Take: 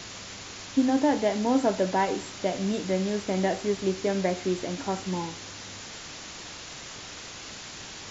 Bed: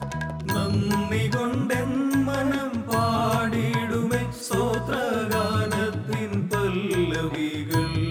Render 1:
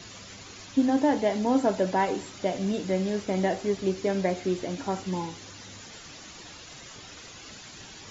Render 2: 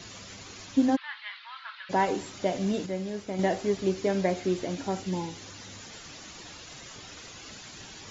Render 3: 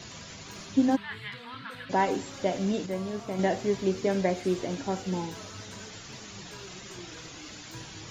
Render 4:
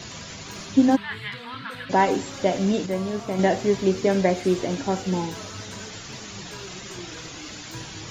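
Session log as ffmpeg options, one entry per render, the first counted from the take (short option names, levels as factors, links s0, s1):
-af "afftdn=nr=9:nf=-42"
-filter_complex "[0:a]asplit=3[s0][s1][s2];[s0]afade=t=out:st=0.95:d=0.02[s3];[s1]asuperpass=centerf=2200:order=12:qfactor=0.71,afade=t=in:st=0.95:d=0.02,afade=t=out:st=1.89:d=0.02[s4];[s2]afade=t=in:st=1.89:d=0.02[s5];[s3][s4][s5]amix=inputs=3:normalize=0,asettb=1/sr,asplit=3[s6][s7][s8];[s6]atrim=end=4.794[s9];[s7]atrim=start=4.79:end=5.36,asetpts=PTS-STARTPTS,afade=t=in:d=0.004:c=qsin,afade=t=out:st=0.566:d=0.004:c=qsin,equalizer=f=1100:t=o:w=0.77:g=-5.5[s10];[s8]atrim=start=5.356[s11];[s9][s10]acrossfade=d=0.004:c1=hsin:c2=qsin[s12];[s12][s11]acrossfade=d=0.004:c1=qsin:c2=hsin,asplit=3[s13][s14][s15];[s13]atrim=end=2.862[s16];[s14]atrim=start=2.858:end=3.392,asetpts=PTS-STARTPTS,volume=0.501[s17];[s15]atrim=start=3.388[s18];[s16][s17]acrossfade=d=0.004:c1=hsin:c2=hsin[s19];[s19][s18]acrossfade=d=0.004:c1=hsin:c2=hsin"
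-filter_complex "[1:a]volume=0.0708[s0];[0:a][s0]amix=inputs=2:normalize=0"
-af "volume=2"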